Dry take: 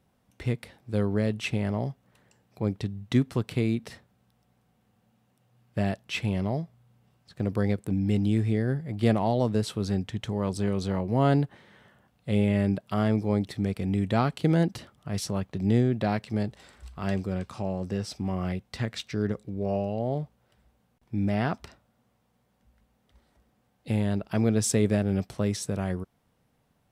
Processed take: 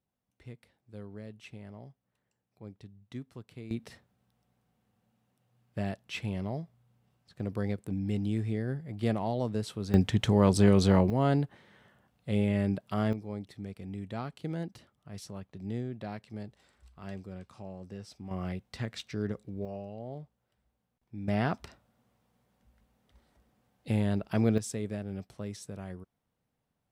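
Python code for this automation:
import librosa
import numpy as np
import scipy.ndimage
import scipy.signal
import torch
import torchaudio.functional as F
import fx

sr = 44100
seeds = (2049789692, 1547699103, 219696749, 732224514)

y = fx.gain(x, sr, db=fx.steps((0.0, -18.5), (3.71, -6.5), (9.94, 6.0), (11.1, -4.0), (13.13, -13.0), (18.31, -5.5), (19.65, -12.5), (21.28, -2.0), (24.58, -12.0)))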